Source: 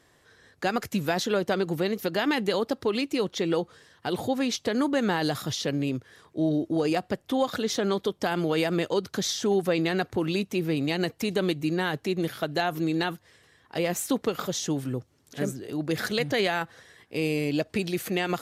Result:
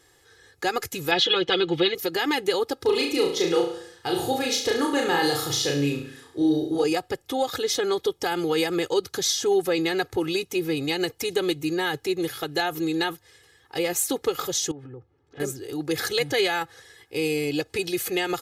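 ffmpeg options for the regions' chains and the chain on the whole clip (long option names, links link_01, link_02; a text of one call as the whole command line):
ffmpeg -i in.wav -filter_complex "[0:a]asettb=1/sr,asplit=3[link_01][link_02][link_03];[link_01]atrim=end=1.114[link_04];[link_02]atrim=start=1.11:end=1.95,asetpts=PTS-STARTPTS,afade=type=in:duration=0.004:curve=qsin,afade=type=out:start_time=0.836:duration=0.004:curve=qsin,lowpass=frequency=3300:width_type=q:width=4.6,aecho=1:1:5.9:0.66,atrim=end_sample=37044[link_05];[link_03]atrim=start=1.946[link_06];[link_04][link_05]acrossfade=duration=0.004:curve1=hsin:curve2=qsin[link_07];[link_07][link_06]acrossfade=duration=0.004:curve1=qsin:curve2=hsin,asettb=1/sr,asplit=3[link_08][link_09][link_10];[link_08]atrim=end=2.774[link_11];[link_09]atrim=start=2.77:end=6.84,asetpts=PTS-STARTPTS,afade=type=in:duration=0.004:curve=qsin,afade=type=out:start_time=4.066:duration=0.004:curve=qsin,deesser=0.55,asplit=2[link_12][link_13];[link_13]adelay=35,volume=-3dB[link_14];[link_12][link_14]amix=inputs=2:normalize=0,atrim=end_sample=179487,aecho=1:1:70|140|210|280|350:0.376|0.18|0.0866|0.0416|0.02,atrim=end_sample=179487[link_15];[link_10]atrim=start=6.836[link_16];[link_11][link_15]acrossfade=duration=0.004:curve1=hsin:curve2=qsin[link_17];[link_17][link_16]acrossfade=duration=0.004:curve1=qsin:curve2=hsin,asettb=1/sr,asplit=3[link_18][link_19][link_20];[link_18]atrim=end=14.714[link_21];[link_19]atrim=start=14.71:end=15.4,asetpts=PTS-STARTPTS,afade=type=in:duration=0.004:curve=qsin,afade=type=out:start_time=0.686:duration=0.004:curve=qsin,lowpass=1500,acompressor=threshold=-36dB:ratio=6:attack=3.2:release=140:knee=1:detection=peak[link_22];[link_20]atrim=start=15.396[link_23];[link_21][link_22]acrossfade=duration=0.004:curve1=hsin:curve2=qsin[link_24];[link_24][link_23]acrossfade=duration=0.004:curve1=qsin:curve2=hsin,highshelf=frequency=3900:gain=7.5,aecho=1:1:2.4:0.83,volume=-1.5dB" out.wav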